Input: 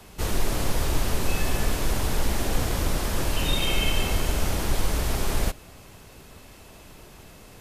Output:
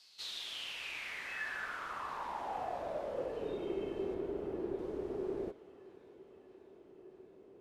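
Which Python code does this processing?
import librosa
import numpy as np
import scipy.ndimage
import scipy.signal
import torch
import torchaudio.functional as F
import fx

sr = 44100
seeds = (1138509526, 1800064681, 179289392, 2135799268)

y = fx.filter_sweep_bandpass(x, sr, from_hz=4600.0, to_hz=380.0, start_s=0.02, end_s=3.67, q=6.0)
y = fx.peak_eq(y, sr, hz=6400.0, db=-7.5, octaves=1.5, at=(4.14, 4.79))
y = fx.echo_thinned(y, sr, ms=628, feedback_pct=70, hz=420.0, wet_db=-19.0)
y = F.gain(torch.from_numpy(y), 2.5).numpy()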